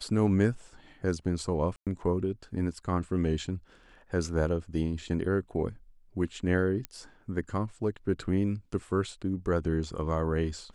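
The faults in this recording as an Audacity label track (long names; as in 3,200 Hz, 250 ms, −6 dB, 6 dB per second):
1.760000	1.870000	drop-out 107 ms
6.850000	6.850000	click −19 dBFS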